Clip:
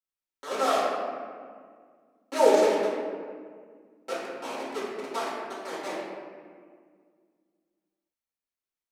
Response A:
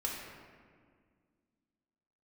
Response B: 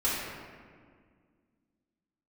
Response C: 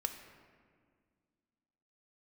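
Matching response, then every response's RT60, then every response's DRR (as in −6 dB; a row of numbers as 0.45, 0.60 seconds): B; 1.9, 1.9, 1.9 seconds; −3.0, −10.0, 6.0 decibels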